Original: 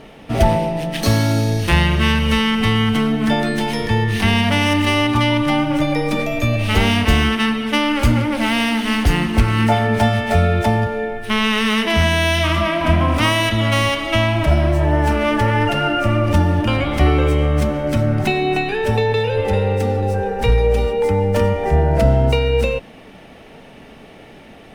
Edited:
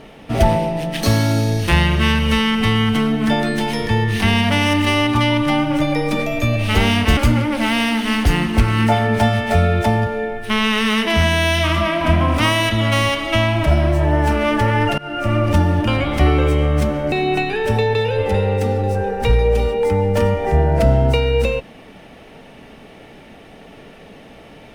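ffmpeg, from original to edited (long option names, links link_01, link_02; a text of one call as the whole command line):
ffmpeg -i in.wav -filter_complex "[0:a]asplit=4[link_01][link_02][link_03][link_04];[link_01]atrim=end=7.172[link_05];[link_02]atrim=start=7.968:end=15.78,asetpts=PTS-STARTPTS,afade=type=out:start_time=7.808:duration=0.004:curve=hsin:silence=0.0707946[link_06];[link_03]atrim=start=15.78:end=17.922,asetpts=PTS-STARTPTS,afade=type=in:duration=0.37:silence=0.0707946[link_07];[link_04]atrim=start=18.308[link_08];[link_06][link_07]concat=n=2:v=0:a=1[link_09];[link_05][link_09]acrossfade=duration=0.004:curve1=hsin:curve2=hsin[link_10];[link_10][link_08]acrossfade=duration=0.004:curve1=hsin:curve2=hsin" out.wav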